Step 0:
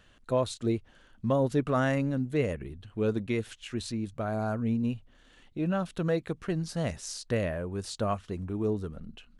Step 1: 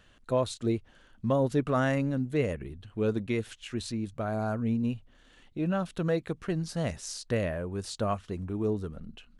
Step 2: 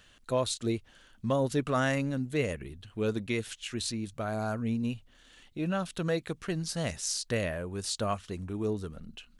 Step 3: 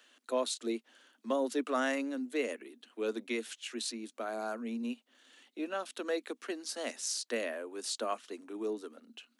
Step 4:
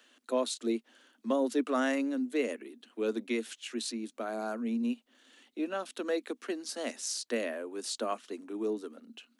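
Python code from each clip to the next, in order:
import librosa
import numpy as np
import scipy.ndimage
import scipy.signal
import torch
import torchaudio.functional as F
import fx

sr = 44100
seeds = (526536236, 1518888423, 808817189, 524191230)

y1 = x
y2 = fx.high_shelf(y1, sr, hz=2100.0, db=10.0)
y2 = y2 * librosa.db_to_amplitude(-2.5)
y3 = scipy.signal.sosfilt(scipy.signal.butter(16, 230.0, 'highpass', fs=sr, output='sos'), y2)
y3 = y3 * librosa.db_to_amplitude(-3.0)
y4 = fx.low_shelf(y3, sr, hz=230.0, db=11.5)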